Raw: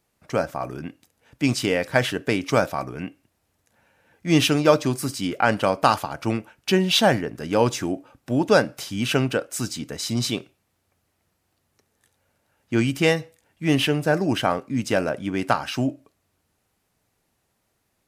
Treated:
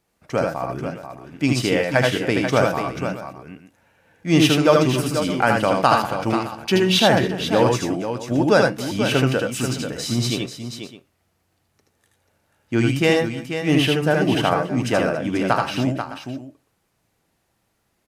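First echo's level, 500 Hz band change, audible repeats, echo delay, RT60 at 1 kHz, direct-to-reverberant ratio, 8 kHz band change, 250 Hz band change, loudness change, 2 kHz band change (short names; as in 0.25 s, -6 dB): -3.5 dB, +3.5 dB, 4, 77 ms, none, none, +1.0 dB, +3.5 dB, +3.0 dB, +3.0 dB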